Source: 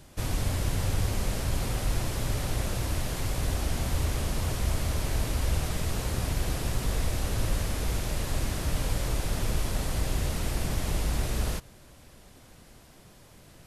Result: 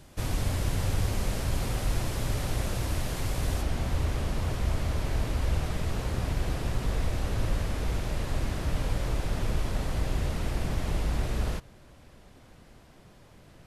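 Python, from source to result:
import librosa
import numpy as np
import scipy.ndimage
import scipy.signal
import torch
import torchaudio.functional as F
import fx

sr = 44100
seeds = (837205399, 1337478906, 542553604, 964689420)

y = fx.high_shelf(x, sr, hz=5100.0, db=fx.steps((0.0, -3.0), (3.61, -11.5)))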